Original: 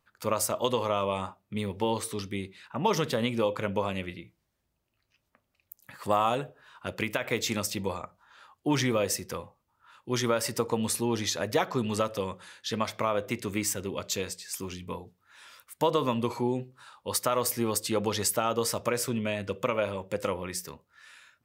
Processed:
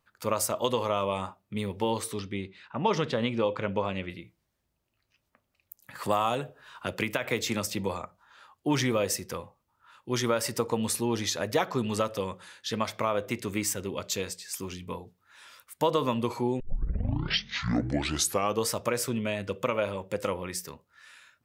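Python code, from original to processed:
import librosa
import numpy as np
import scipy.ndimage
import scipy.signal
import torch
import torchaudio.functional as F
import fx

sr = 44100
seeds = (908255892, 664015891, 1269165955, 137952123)

y = fx.lowpass(x, sr, hz=4500.0, slope=12, at=(2.19, 4.1))
y = fx.band_squash(y, sr, depth_pct=40, at=(5.95, 8.04))
y = fx.edit(y, sr, fx.tape_start(start_s=16.6, length_s=2.07), tone=tone)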